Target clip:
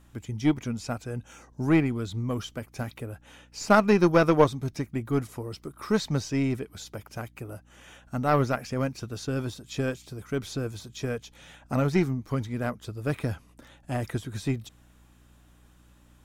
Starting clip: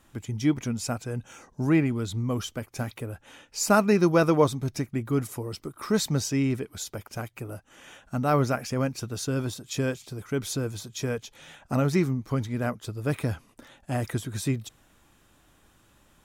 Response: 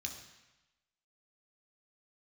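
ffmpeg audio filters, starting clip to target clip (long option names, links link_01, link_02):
-filter_complex "[0:a]aeval=exprs='0.422*(cos(1*acos(clip(val(0)/0.422,-1,1)))-cos(1*PI/2))+0.0335*(cos(3*acos(clip(val(0)/0.422,-1,1)))-cos(3*PI/2))+0.0188*(cos(4*acos(clip(val(0)/0.422,-1,1)))-cos(4*PI/2))+0.0106*(cos(7*acos(clip(val(0)/0.422,-1,1)))-cos(7*PI/2))':channel_layout=same,acrossover=split=5500[link_01][link_02];[link_02]acompressor=threshold=-51dB:ratio=4:attack=1:release=60[link_03];[link_01][link_03]amix=inputs=2:normalize=0,aeval=exprs='val(0)+0.00112*(sin(2*PI*60*n/s)+sin(2*PI*2*60*n/s)/2+sin(2*PI*3*60*n/s)/3+sin(2*PI*4*60*n/s)/4+sin(2*PI*5*60*n/s)/5)':channel_layout=same,volume=2.5dB"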